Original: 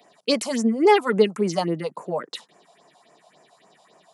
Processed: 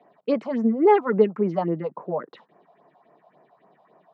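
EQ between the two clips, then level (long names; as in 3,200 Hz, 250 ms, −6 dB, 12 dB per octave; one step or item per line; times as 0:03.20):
low-pass filter 1,400 Hz 12 dB per octave
high-frequency loss of the air 81 metres
0.0 dB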